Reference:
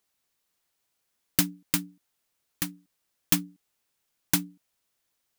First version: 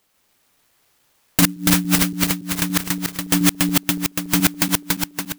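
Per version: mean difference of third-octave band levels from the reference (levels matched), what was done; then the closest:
13.5 dB: feedback delay that plays each chunk backwards 142 ms, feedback 74%, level −1 dB
boost into a limiter +13 dB
converter with an unsteady clock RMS 0.052 ms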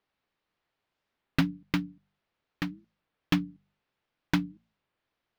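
6.5 dB: high-frequency loss of the air 310 metres
hum removal 48.99 Hz, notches 5
wow of a warped record 33 1/3 rpm, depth 250 cents
level +3.5 dB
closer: second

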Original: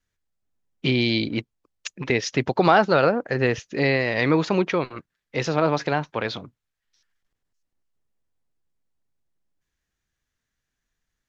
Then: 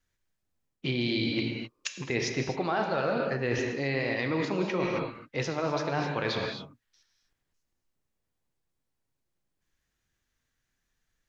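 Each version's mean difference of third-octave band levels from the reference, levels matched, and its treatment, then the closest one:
6.0 dB: reverb whose tail is shaped and stops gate 290 ms flat, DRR 3.5 dB
reversed playback
downward compressor 6 to 1, threshold −26 dBFS, peak gain reduction 14.5 dB
reversed playback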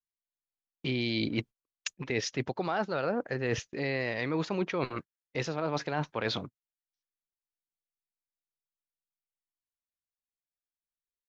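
3.0 dB: noise gate −38 dBFS, range −29 dB
reversed playback
downward compressor 10 to 1, threshold −27 dBFS, peak gain reduction 16 dB
reversed playback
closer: second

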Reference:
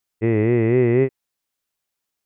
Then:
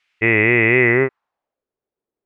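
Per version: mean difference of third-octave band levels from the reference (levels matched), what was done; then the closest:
4.5 dB: tilt shelving filter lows −10 dB
in parallel at 0 dB: brickwall limiter −21 dBFS, peak gain reduction 10 dB
on the sum: low-pass filter sweep 2,400 Hz → 420 Hz, 0:00.77–0:01.68
level +4 dB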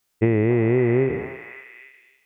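2.0 dB: peak hold with a decay on every bin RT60 0.60 s
downward compressor, threshold −22 dBFS, peak gain reduction 9.5 dB
echo through a band-pass that steps 278 ms, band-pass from 980 Hz, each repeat 0.7 octaves, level −1.5 dB
level +6.5 dB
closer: second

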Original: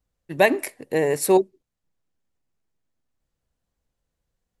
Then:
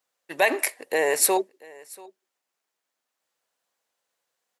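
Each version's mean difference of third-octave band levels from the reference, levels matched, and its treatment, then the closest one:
6.5 dB: brickwall limiter −13 dBFS, peak gain reduction 10 dB
high-pass filter 670 Hz 12 dB per octave
single-tap delay 686 ms −23 dB
level +7 dB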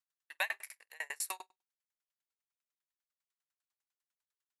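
12.0 dB: high-pass filter 1,100 Hz 24 dB per octave
on a send: flutter between parallel walls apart 8.1 metres, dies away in 0.25 s
on the sum: tremolo with a ramp in dB decaying 10 Hz, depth 37 dB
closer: first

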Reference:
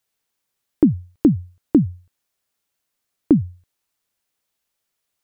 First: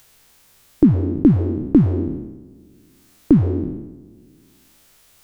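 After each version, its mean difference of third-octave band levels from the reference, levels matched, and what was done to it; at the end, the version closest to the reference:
9.5 dB: peak hold with a decay on every bin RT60 1.06 s
low-shelf EQ 90 Hz +12 dB
upward compression, threshold −34 dBFS
level −1 dB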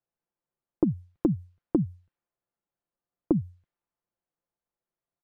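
1.0 dB: low-pass that shuts in the quiet parts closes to 1,000 Hz, open at −15 dBFS
downward compressor, threshold −14 dBFS, peak gain reduction 5.5 dB
comb filter 5.8 ms, depth 39%
level −6 dB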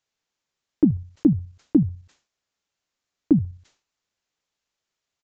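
2.0 dB: output level in coarse steps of 10 dB
downsampling to 16,000 Hz
level that may fall only so fast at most 140 dB per second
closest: second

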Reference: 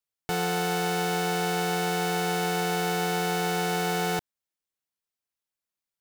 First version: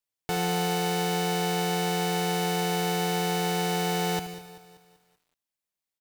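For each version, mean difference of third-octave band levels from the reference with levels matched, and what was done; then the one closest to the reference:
1.5 dB: parametric band 1,400 Hz −4.5 dB 0.22 octaves
repeating echo 74 ms, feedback 57%, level −11 dB
feedback echo at a low word length 193 ms, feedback 55%, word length 9 bits, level −14.5 dB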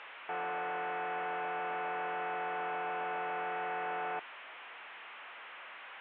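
14.5 dB: linear delta modulator 16 kbit/s, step −38.5 dBFS
high-pass filter 820 Hz 12 dB per octave
high-frequency loss of the air 210 metres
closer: first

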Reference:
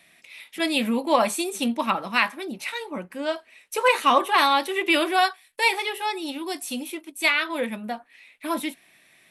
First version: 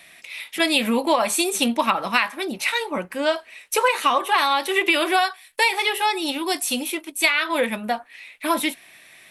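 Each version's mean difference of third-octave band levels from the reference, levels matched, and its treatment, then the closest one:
3.5 dB: parametric band 210 Hz −6 dB 2 octaves
downward compressor 12 to 1, threshold −24 dBFS, peak gain reduction 11 dB
level +9 dB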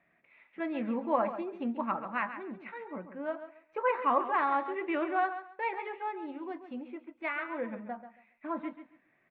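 9.0 dB: low-pass filter 1,800 Hz 24 dB per octave
on a send: repeating echo 137 ms, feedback 22%, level −11 dB
on the sum: level −8.5 dB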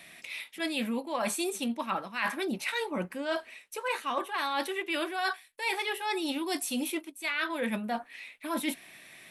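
4.5 dB: dynamic equaliser 1,600 Hz, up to +5 dB, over −42 dBFS, Q 4.8
reversed playback
downward compressor 12 to 1, threshold −34 dBFS, peak gain reduction 21.5 dB
reversed playback
level +5.5 dB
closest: first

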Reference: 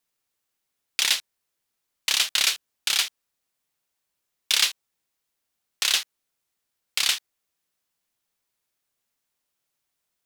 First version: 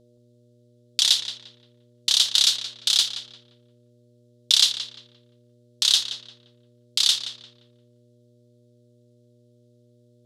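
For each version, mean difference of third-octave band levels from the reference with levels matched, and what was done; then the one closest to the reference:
7.0 dB: hum with harmonics 120 Hz, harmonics 5, −52 dBFS −1 dB per octave
low-pass filter 9,600 Hz 12 dB per octave
high shelf with overshoot 2,900 Hz +7 dB, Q 3
on a send: feedback echo with a low-pass in the loop 174 ms, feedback 33%, low-pass 2,700 Hz, level −8.5 dB
on the sum: level −6 dB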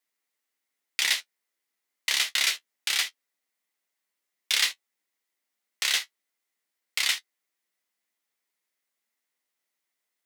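2.0 dB: parametric band 2,000 Hz +9.5 dB 0.26 octaves
flanger 0.26 Hz, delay 9.1 ms, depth 6.1 ms, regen −35%
high-pass filter 200 Hz 24 dB per octave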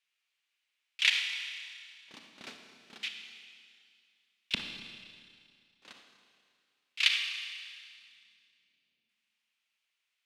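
13.0 dB: volume swells 142 ms
auto-filter band-pass square 0.33 Hz 220–2,600 Hz
dynamic equaliser 1,900 Hz, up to +4 dB, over −48 dBFS, Q 0.71
four-comb reverb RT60 2.2 s, combs from 27 ms, DRR 4 dB
level +7 dB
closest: second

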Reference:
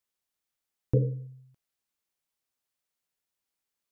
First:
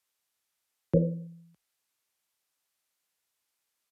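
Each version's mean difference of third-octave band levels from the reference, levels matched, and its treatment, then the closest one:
4.5 dB: low-shelf EQ 420 Hz −8 dB
frequency shifter +38 Hz
downsampling to 32,000 Hz
level +6.5 dB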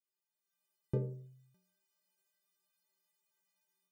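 2.5 dB: high-pass filter 49 Hz
automatic gain control
stiff-string resonator 180 Hz, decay 0.61 s, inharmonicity 0.03
level +7 dB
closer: second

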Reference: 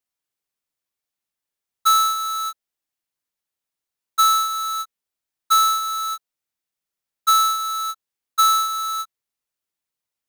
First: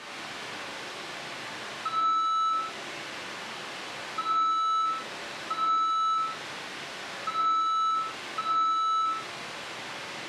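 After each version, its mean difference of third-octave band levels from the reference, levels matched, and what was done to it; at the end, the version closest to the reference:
11.5 dB: linear delta modulator 64 kbit/s, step −27 dBFS
downward compressor 4 to 1, threshold −29 dBFS, peak gain reduction 11.5 dB
band-pass filter 160–3,000 Hz
reverb whose tail is shaped and stops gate 210 ms flat, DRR −5.5 dB
level −4 dB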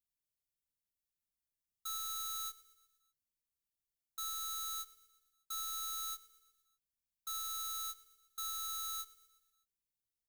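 5.5 dB: guitar amp tone stack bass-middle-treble 10-0-1
brickwall limiter −42.5 dBFS, peak gain reduction 12 dB
high-shelf EQ 7,600 Hz +6 dB
repeating echo 121 ms, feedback 56%, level −18 dB
level +9 dB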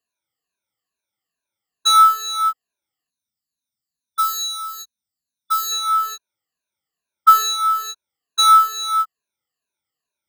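4.5 dB: rippled gain that drifts along the octave scale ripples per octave 1.5, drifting −2.3 Hz, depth 24 dB
high-pass filter 49 Hz 24 dB per octave
high-shelf EQ 7,400 Hz −8 dB
gain on a spectral selection 0:03.09–0:05.72, 290–3,500 Hz −12 dB
level −1 dB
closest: third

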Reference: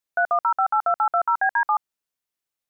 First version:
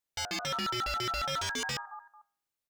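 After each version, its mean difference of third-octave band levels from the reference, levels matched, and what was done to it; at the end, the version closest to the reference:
24.5 dB: low-shelf EQ 480 Hz +3 dB
hum removal 102.5 Hz, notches 31
on a send: repeating echo 223 ms, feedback 25%, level −21.5 dB
on the sum: wave folding −25.5 dBFS
level −3 dB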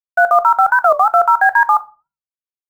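4.0 dB: downward expander −26 dBFS
in parallel at −11.5 dB: bit-depth reduction 6 bits, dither none
on the sum: rectangular room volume 170 cubic metres, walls furnished, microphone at 0.42 metres
wow of a warped record 45 rpm, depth 250 cents
level +7 dB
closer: second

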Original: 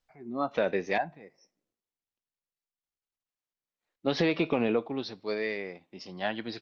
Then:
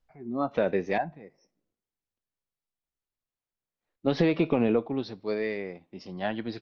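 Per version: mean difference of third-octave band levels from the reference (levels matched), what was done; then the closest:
2.5 dB: spectral tilt −2 dB per octave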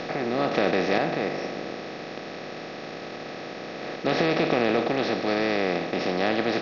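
9.5 dB: compressor on every frequency bin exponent 0.2
level −2.5 dB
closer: first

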